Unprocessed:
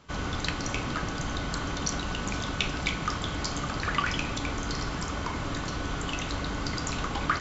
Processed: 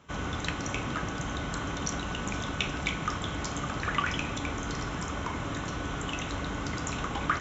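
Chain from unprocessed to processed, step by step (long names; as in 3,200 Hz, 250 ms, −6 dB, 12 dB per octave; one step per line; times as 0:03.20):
high-pass filter 47 Hz
parametric band 4,600 Hz −14 dB 0.24 octaves
level −1 dB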